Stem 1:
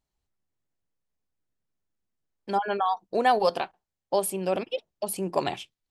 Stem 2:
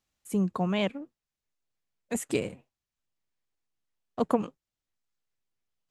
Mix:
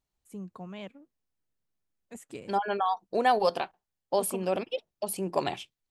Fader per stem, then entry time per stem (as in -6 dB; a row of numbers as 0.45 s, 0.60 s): -2.0 dB, -14.0 dB; 0.00 s, 0.00 s